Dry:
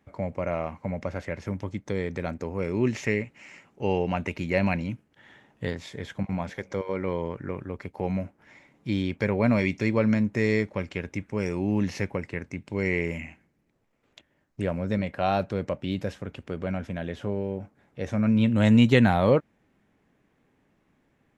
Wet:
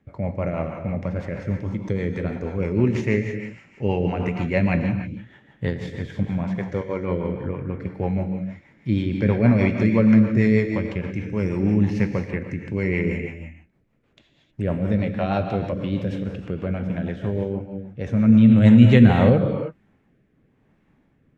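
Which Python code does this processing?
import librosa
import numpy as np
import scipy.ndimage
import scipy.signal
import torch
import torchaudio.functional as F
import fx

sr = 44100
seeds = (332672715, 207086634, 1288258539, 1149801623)

y = fx.bass_treble(x, sr, bass_db=5, treble_db=-8)
y = fx.rev_gated(y, sr, seeds[0], gate_ms=340, shape='flat', drr_db=4.0)
y = fx.rotary_switch(y, sr, hz=6.3, then_hz=1.0, switch_at_s=18.54)
y = F.gain(torch.from_numpy(y), 3.0).numpy()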